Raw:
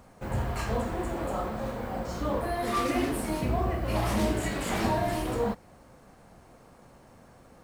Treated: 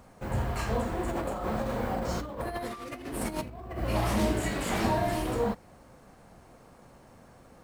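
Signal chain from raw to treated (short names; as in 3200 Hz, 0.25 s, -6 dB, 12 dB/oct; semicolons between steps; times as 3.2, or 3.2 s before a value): 1.08–3.79 negative-ratio compressor -33 dBFS, ratio -0.5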